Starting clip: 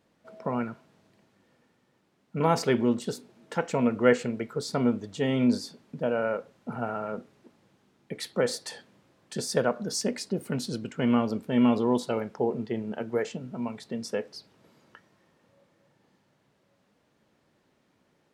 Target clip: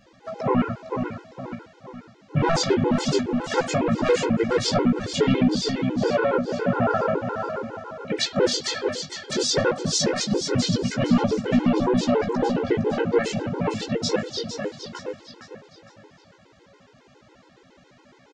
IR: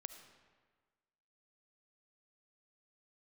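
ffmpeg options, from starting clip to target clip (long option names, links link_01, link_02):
-filter_complex "[0:a]aresample=16000,asoftclip=type=tanh:threshold=-21dB,aresample=44100,asplit=3[link_01][link_02][link_03];[link_02]asetrate=33038,aresample=44100,atempo=1.33484,volume=-6dB[link_04];[link_03]asetrate=55563,aresample=44100,atempo=0.793701,volume=-13dB[link_05];[link_01][link_04][link_05]amix=inputs=3:normalize=0,flanger=delay=15.5:depth=4.4:speed=0.17,aecho=1:1:459|918|1377|1836:0.335|0.137|0.0563|0.0231,asplit=2[link_06][link_07];[link_07]acompressor=threshold=-39dB:ratio=6,volume=1dB[link_08];[link_06][link_08]amix=inputs=2:normalize=0,equalizer=frequency=160:width_type=o:width=1.9:gain=-3,alimiter=level_in=21.5dB:limit=-1dB:release=50:level=0:latency=1,afftfilt=real='re*gt(sin(2*PI*7.2*pts/sr)*(1-2*mod(floor(b*sr/1024/270),2)),0)':imag='im*gt(sin(2*PI*7.2*pts/sr)*(1-2*mod(floor(b*sr/1024/270),2)),0)':win_size=1024:overlap=0.75,volume=-8dB"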